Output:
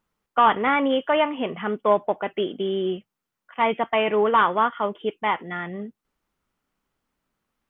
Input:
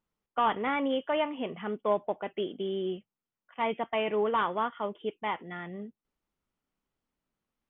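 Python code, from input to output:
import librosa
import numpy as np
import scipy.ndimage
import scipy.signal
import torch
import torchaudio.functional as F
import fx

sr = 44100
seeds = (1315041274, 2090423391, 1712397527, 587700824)

y = fx.peak_eq(x, sr, hz=1400.0, db=4.0, octaves=1.3)
y = y * 10.0 ** (7.0 / 20.0)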